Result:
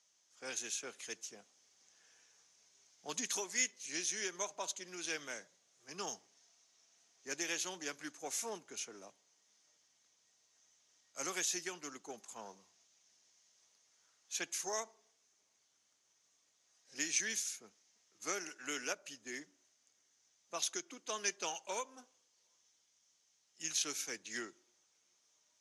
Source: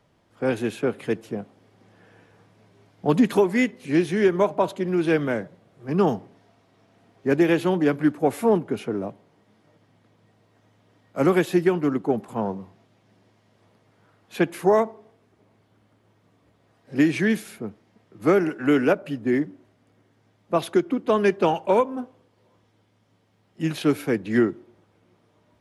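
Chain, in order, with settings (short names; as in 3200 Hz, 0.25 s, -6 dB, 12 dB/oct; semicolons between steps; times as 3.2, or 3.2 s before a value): band-pass 6300 Hz, Q 6.4; gain +14 dB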